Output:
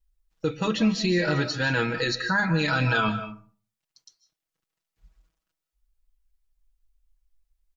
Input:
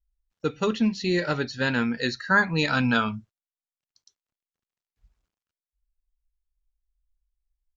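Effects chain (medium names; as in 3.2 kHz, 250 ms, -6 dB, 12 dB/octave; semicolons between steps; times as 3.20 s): comb 6.2 ms, depth 93%; peak limiter -18 dBFS, peak gain reduction 12.5 dB; algorithmic reverb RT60 0.43 s, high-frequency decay 0.55×, pre-delay 115 ms, DRR 11 dB; trim +3 dB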